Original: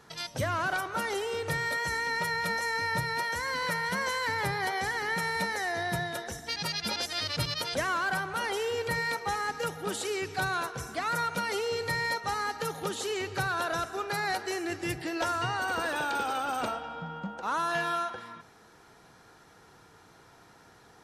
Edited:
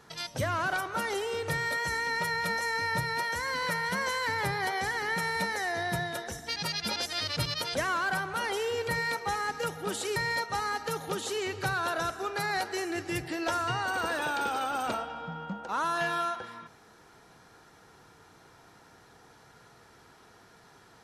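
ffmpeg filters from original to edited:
-filter_complex "[0:a]asplit=2[s0][s1];[s0]atrim=end=10.162[s2];[s1]atrim=start=11.898[s3];[s2][s3]acrossfade=d=0.004:c1=hsin:c2=hsin"

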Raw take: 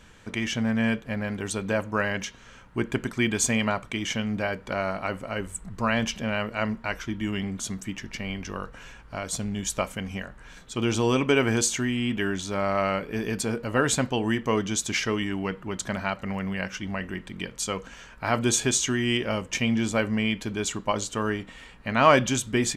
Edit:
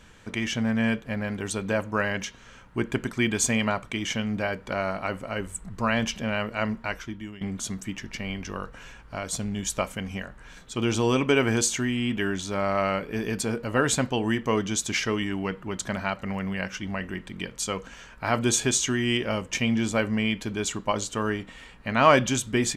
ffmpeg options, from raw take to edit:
-filter_complex "[0:a]asplit=2[s0][s1];[s0]atrim=end=7.41,asetpts=PTS-STARTPTS,afade=t=out:st=6.84:d=0.57:silence=0.125893[s2];[s1]atrim=start=7.41,asetpts=PTS-STARTPTS,afade=t=in:d=0.004:c=hsin:silence=0.125893[s3];[s2][s3]concat=n=2:v=0:a=1"

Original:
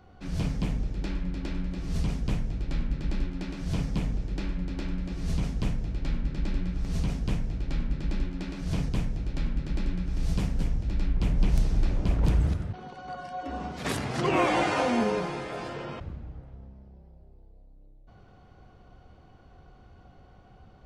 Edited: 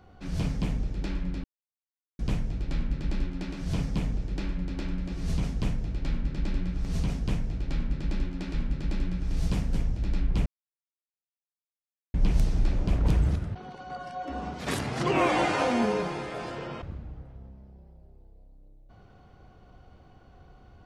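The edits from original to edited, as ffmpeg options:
-filter_complex "[0:a]asplit=5[s0][s1][s2][s3][s4];[s0]atrim=end=1.44,asetpts=PTS-STARTPTS,afade=t=out:st=1.436:d=0.004:c=hsin[s5];[s1]atrim=start=1.44:end=2.19,asetpts=PTS-STARTPTS,volume=0[s6];[s2]atrim=start=2.19:end=8.542,asetpts=PTS-STARTPTS,afade=t=in:d=0.004:c=hsin[s7];[s3]atrim=start=9.398:end=11.32,asetpts=PTS-STARTPTS,afade=t=out:st=1.918:d=0.004:c=hsin,apad=pad_dur=1.68[s8];[s4]atrim=start=11.32,asetpts=PTS-STARTPTS,afade=t=in:d=0.004:c=hsin[s9];[s5][s6][s7]concat=n=3:v=0:a=1[s10];[s8][s9]concat=n=2:v=0:a=1[s11];[s10][s11]acrossfade=d=0.004:c1=hsin:c2=hsin"

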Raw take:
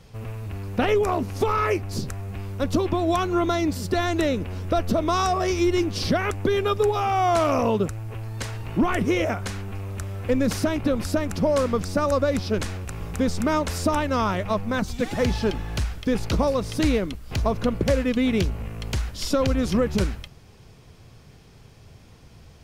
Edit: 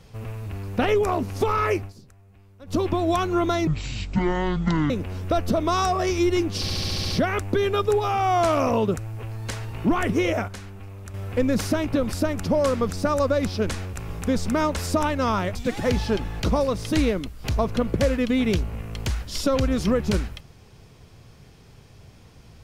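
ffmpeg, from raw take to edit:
-filter_complex "[0:a]asplit=16[s0][s1][s2][s3][s4][s5][s6][s7][s8][s9][s10][s11][s12][s13][s14][s15];[s0]atrim=end=1.93,asetpts=PTS-STARTPTS,afade=t=out:st=1.76:d=0.17:c=qsin:silence=0.1[s16];[s1]atrim=start=1.93:end=2.66,asetpts=PTS-STARTPTS,volume=0.1[s17];[s2]atrim=start=2.66:end=3.674,asetpts=PTS-STARTPTS,afade=t=in:d=0.17:c=qsin:silence=0.1[s18];[s3]atrim=start=3.67:end=4.31,asetpts=PTS-STARTPTS,asetrate=22932,aresample=44100[s19];[s4]atrim=start=4.306:end=6.092[s20];[s5]atrim=start=6.018:end=6.092[s21];[s6]atrim=start=6.018:end=6.092[s22];[s7]atrim=start=6.018:end=6.092[s23];[s8]atrim=start=6.018:end=6.092[s24];[s9]atrim=start=6.018:end=6.092[s25];[s10]atrim=start=6.018:end=6.092[s26];[s11]atrim=start=6.018:end=9.402[s27];[s12]atrim=start=9.398:end=10.062,asetpts=PTS-STARTPTS,volume=0.447[s28];[s13]atrim=start=10.058:end=14.472[s29];[s14]atrim=start=14.888:end=15.742[s30];[s15]atrim=start=16.268[s31];[s16][s17][s18]concat=n=3:v=0:a=1[s32];[s32][s19]acrossfade=d=0.004:c1=hsin:c2=hsin[s33];[s33][s20]acrossfade=d=0.004:c1=hsin:c2=hsin[s34];[s34][s21]acrossfade=d=0.004:c1=hsin:c2=hsin[s35];[s35][s22]acrossfade=d=0.004:c1=hsin:c2=hsin[s36];[s36][s23]acrossfade=d=0.004:c1=hsin:c2=hsin[s37];[s37][s24]acrossfade=d=0.004:c1=hsin:c2=hsin[s38];[s38][s25]acrossfade=d=0.004:c1=hsin:c2=hsin[s39];[s39][s26]acrossfade=d=0.004:c1=hsin:c2=hsin[s40];[s40][s27]acrossfade=d=0.004:c1=hsin:c2=hsin[s41];[s41][s28]acrossfade=d=0.004:c1=hsin:c2=hsin[s42];[s42][s29]acrossfade=d=0.004:c1=hsin:c2=hsin[s43];[s43][s30]acrossfade=d=0.004:c1=hsin:c2=hsin[s44];[s44][s31]acrossfade=d=0.004:c1=hsin:c2=hsin"

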